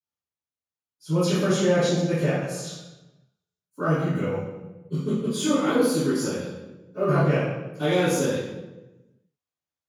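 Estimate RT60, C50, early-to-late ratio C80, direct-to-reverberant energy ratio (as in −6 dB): 1.1 s, −1.5 dB, 2.0 dB, −17.5 dB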